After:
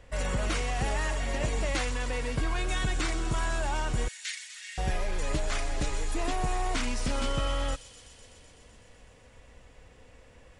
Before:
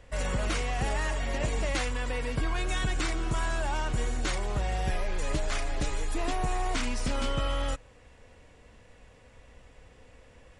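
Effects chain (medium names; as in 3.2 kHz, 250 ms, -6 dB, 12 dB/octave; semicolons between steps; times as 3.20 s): 4.08–4.78 s: elliptic high-pass 1.8 kHz, stop band 70 dB; on a send: feedback echo behind a high-pass 126 ms, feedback 81%, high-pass 4.7 kHz, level -8 dB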